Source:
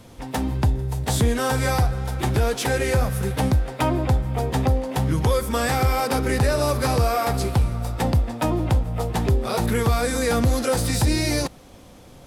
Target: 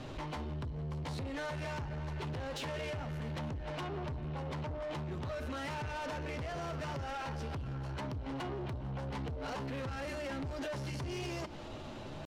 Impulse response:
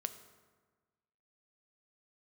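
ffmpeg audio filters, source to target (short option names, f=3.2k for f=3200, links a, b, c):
-filter_complex "[0:a]alimiter=limit=-21.5dB:level=0:latency=1:release=113,acompressor=threshold=-33dB:ratio=10,asetrate=50951,aresample=44100,atempo=0.865537,lowpass=4.2k,equalizer=f=3k:t=o:w=0.28:g=4.5,bandreject=f=60:t=h:w=6,bandreject=f=120:t=h:w=6,bandreject=f=180:t=h:w=6,bandreject=f=240:t=h:w=6,bandreject=f=300:t=h:w=6,asplit=2[a][b];[1:a]atrim=start_sample=2205,asetrate=33516,aresample=44100,adelay=8[c];[b][c]afir=irnorm=-1:irlink=0,volume=-11.5dB[d];[a][d]amix=inputs=2:normalize=0,asoftclip=type=tanh:threshold=-39dB,volume=3dB"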